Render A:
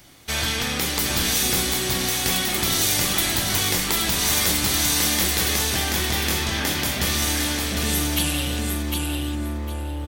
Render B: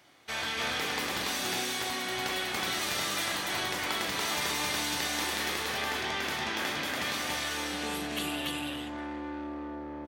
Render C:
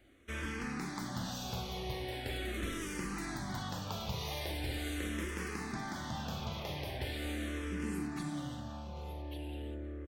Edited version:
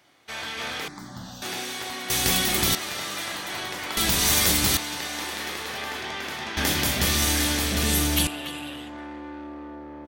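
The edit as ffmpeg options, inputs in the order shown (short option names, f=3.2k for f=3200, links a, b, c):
-filter_complex "[0:a]asplit=3[a][b][c];[1:a]asplit=5[d][e][f][g][h];[d]atrim=end=0.882[i];[2:a]atrim=start=0.878:end=1.422[j];[e]atrim=start=1.418:end=2.102[k];[a]atrim=start=2.098:end=2.752[l];[f]atrim=start=2.748:end=3.972[m];[b]atrim=start=3.968:end=4.772[n];[g]atrim=start=4.768:end=6.572[o];[c]atrim=start=6.568:end=8.272[p];[h]atrim=start=8.268[q];[i][j]acrossfade=d=0.004:c1=hsin:c2=hsin[r];[r][k]acrossfade=d=0.004:c1=hsin:c2=hsin[s];[s][l]acrossfade=d=0.004:c1=hsin:c2=hsin[t];[t][m]acrossfade=d=0.004:c1=hsin:c2=hsin[u];[u][n]acrossfade=d=0.004:c1=hsin:c2=hsin[v];[v][o]acrossfade=d=0.004:c1=hsin:c2=hsin[w];[w][p]acrossfade=d=0.004:c1=hsin:c2=hsin[x];[x][q]acrossfade=d=0.004:c1=hsin:c2=hsin"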